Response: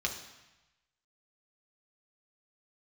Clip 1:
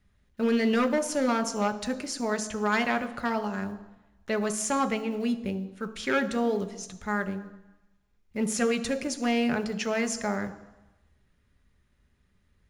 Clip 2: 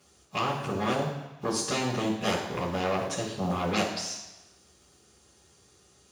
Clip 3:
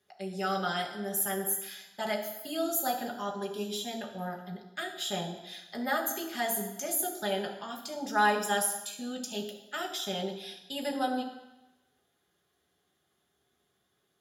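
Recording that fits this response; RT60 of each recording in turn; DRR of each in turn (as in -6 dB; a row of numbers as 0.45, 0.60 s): 3; 1.0, 1.0, 1.0 s; 8.5, -9.5, 0.0 dB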